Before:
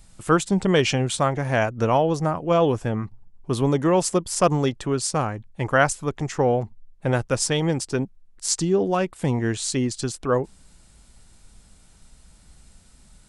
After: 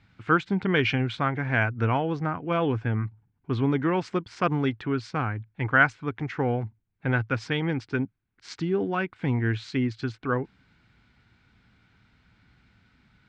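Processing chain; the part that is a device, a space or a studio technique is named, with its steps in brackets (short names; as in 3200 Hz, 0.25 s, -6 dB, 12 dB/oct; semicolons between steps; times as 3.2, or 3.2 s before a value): guitar cabinet (speaker cabinet 82–3900 Hz, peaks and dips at 110 Hz +9 dB, 270 Hz +5 dB, 580 Hz -8 dB, 1500 Hz +9 dB, 2200 Hz +8 dB); gain -5.5 dB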